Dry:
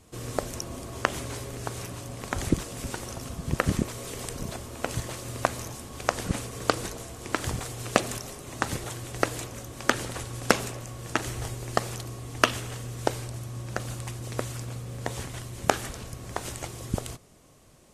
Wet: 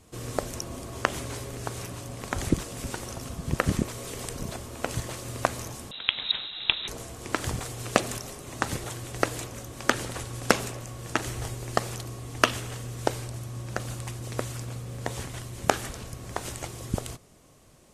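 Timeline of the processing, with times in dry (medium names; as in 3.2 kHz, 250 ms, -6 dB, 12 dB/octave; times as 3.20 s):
5.91–6.88 s: frequency inversion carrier 3.9 kHz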